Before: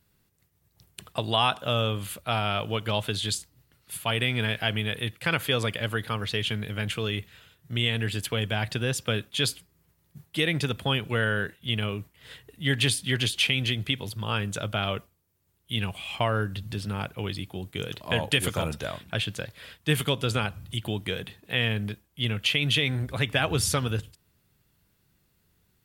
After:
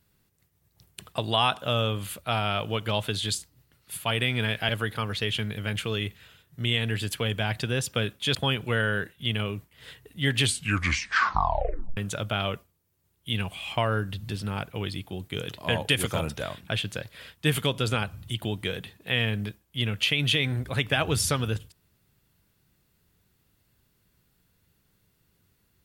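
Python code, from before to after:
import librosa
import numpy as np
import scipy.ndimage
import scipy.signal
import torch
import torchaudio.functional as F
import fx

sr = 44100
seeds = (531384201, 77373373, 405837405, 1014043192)

y = fx.edit(x, sr, fx.cut(start_s=4.69, length_s=1.12),
    fx.cut(start_s=9.47, length_s=1.31),
    fx.tape_stop(start_s=12.83, length_s=1.57), tone=tone)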